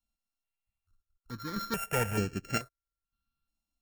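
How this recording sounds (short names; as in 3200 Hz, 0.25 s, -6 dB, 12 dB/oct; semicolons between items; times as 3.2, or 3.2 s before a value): a buzz of ramps at a fixed pitch in blocks of 32 samples; chopped level 0.64 Hz, depth 65%, duty 65%; notches that jump at a steady rate 2.3 Hz 440–3700 Hz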